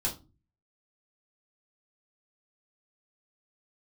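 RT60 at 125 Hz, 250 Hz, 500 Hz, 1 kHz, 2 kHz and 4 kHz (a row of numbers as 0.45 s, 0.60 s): 0.65 s, 0.50 s, 0.35 s, 0.25 s, 0.20 s, 0.20 s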